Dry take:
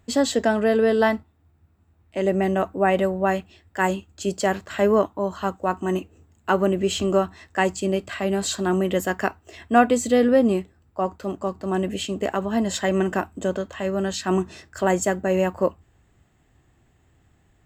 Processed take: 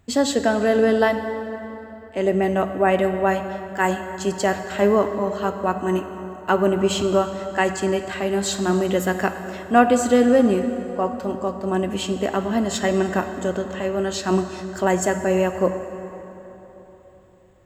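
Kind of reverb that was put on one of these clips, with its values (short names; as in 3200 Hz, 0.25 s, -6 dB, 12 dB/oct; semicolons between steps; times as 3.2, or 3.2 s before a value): plate-style reverb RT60 3.8 s, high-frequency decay 0.6×, DRR 7.5 dB; gain +1 dB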